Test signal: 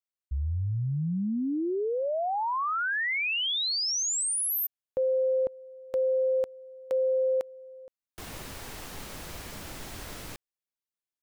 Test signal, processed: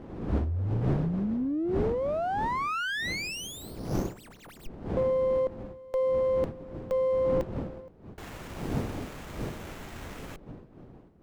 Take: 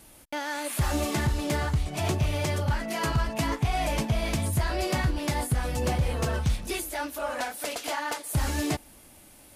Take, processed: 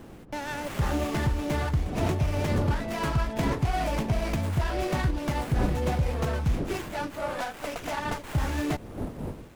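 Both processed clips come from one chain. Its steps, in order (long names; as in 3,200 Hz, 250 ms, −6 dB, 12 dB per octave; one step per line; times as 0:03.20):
wind on the microphone 320 Hz −37 dBFS
windowed peak hold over 9 samples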